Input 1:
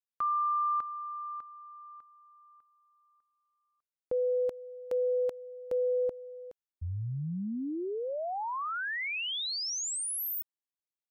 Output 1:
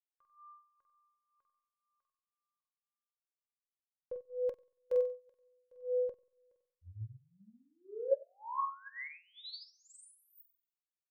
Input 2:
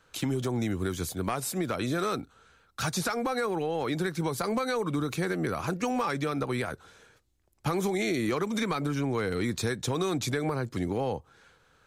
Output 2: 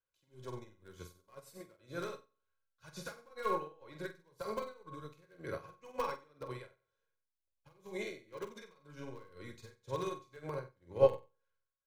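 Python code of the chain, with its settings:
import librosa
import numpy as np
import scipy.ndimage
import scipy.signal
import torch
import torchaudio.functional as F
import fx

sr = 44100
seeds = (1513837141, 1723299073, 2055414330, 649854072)

p1 = fx.peak_eq(x, sr, hz=9400.0, db=-5.5, octaves=1.1)
p2 = p1 + 0.53 * np.pad(p1, (int(2.0 * sr / 1000.0), 0))[:len(p1)]
p3 = (np.mod(10.0 ** (19.0 / 20.0) * p2 + 1.0, 2.0) - 1.0) / 10.0 ** (19.0 / 20.0)
p4 = p2 + (p3 * librosa.db_to_amplitude(-10.5))
p5 = p4 * (1.0 - 0.78 / 2.0 + 0.78 / 2.0 * np.cos(2.0 * np.pi * 2.0 * (np.arange(len(p4)) / sr)))
p6 = fx.comb_fb(p5, sr, f0_hz=550.0, decay_s=0.52, harmonics='all', damping=0.4, mix_pct=90)
p7 = fx.room_flutter(p6, sr, wall_m=8.0, rt60_s=0.57)
p8 = fx.upward_expand(p7, sr, threshold_db=-58.0, expansion=2.5)
y = p8 * librosa.db_to_amplitude(16.0)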